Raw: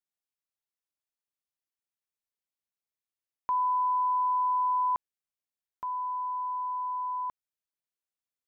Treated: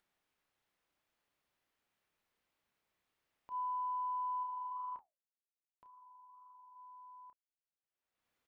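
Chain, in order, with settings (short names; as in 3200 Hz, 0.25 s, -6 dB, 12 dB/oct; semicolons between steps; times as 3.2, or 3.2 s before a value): gate -24 dBFS, range -45 dB; tone controls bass -1 dB, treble -14 dB; upward compressor, threshold -54 dBFS; 4.43–6.76 flange 1.9 Hz, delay 5.4 ms, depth 6.3 ms, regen -77%; doubler 30 ms -8 dB; gain +7 dB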